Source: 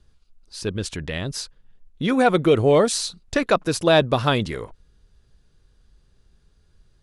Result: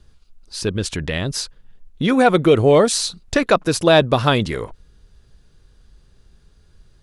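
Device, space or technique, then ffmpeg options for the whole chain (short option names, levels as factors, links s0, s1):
parallel compression: -filter_complex "[0:a]asplit=2[s0][s1];[s1]acompressor=threshold=0.0355:ratio=6,volume=0.596[s2];[s0][s2]amix=inputs=2:normalize=0,volume=1.33"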